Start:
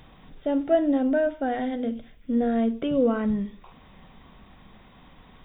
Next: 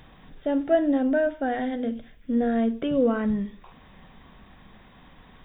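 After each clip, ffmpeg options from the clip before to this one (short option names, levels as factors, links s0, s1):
-af "equalizer=f=1700:w=6.3:g=5.5"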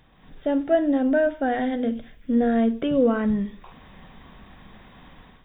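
-af "dynaudnorm=f=110:g=5:m=3.35,volume=0.447"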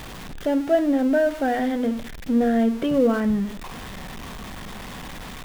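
-af "aeval=exprs='val(0)+0.5*0.0251*sgn(val(0))':c=same"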